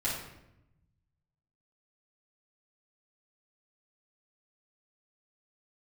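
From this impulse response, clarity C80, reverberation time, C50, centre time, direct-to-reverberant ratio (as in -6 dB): 6.0 dB, 0.85 s, 2.0 dB, 48 ms, -8.0 dB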